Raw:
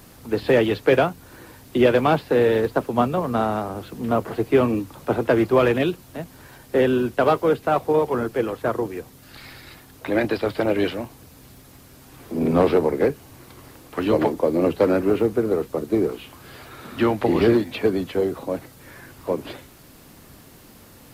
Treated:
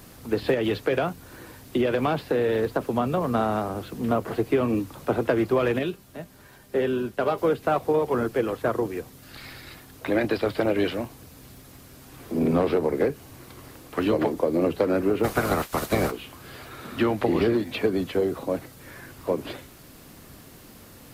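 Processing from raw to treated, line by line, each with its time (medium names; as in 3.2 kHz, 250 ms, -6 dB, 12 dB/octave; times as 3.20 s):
0.54–3.27 s: compression 3:1, threshold -18 dBFS
5.79–7.38 s: feedback comb 200 Hz, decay 0.15 s
15.23–16.10 s: spectral peaks clipped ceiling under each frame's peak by 24 dB
whole clip: peaking EQ 880 Hz -2.5 dB 0.21 oct; compression, threshold -18 dBFS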